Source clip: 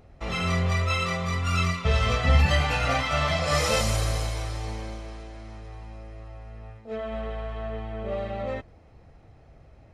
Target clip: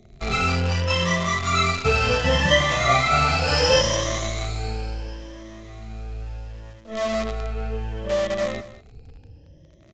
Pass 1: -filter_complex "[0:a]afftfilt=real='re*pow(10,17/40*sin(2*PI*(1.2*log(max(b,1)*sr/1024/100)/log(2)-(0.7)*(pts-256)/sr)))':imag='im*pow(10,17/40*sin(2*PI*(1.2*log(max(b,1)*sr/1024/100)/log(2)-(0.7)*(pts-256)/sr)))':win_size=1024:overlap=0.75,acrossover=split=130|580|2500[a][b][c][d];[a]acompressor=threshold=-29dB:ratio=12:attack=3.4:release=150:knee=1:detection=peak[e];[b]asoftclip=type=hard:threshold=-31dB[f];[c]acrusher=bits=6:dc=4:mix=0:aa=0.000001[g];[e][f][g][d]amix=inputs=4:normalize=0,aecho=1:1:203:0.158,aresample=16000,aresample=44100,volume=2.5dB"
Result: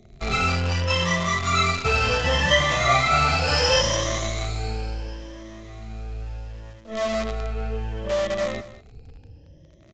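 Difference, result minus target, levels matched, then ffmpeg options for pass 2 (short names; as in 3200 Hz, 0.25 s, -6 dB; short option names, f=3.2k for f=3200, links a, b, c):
hard clip: distortion +21 dB
-filter_complex "[0:a]afftfilt=real='re*pow(10,17/40*sin(2*PI*(1.2*log(max(b,1)*sr/1024/100)/log(2)-(0.7)*(pts-256)/sr)))':imag='im*pow(10,17/40*sin(2*PI*(1.2*log(max(b,1)*sr/1024/100)/log(2)-(0.7)*(pts-256)/sr)))':win_size=1024:overlap=0.75,acrossover=split=130|580|2500[a][b][c][d];[a]acompressor=threshold=-29dB:ratio=12:attack=3.4:release=150:knee=1:detection=peak[e];[b]asoftclip=type=hard:threshold=-19.5dB[f];[c]acrusher=bits=6:dc=4:mix=0:aa=0.000001[g];[e][f][g][d]amix=inputs=4:normalize=0,aecho=1:1:203:0.158,aresample=16000,aresample=44100,volume=2.5dB"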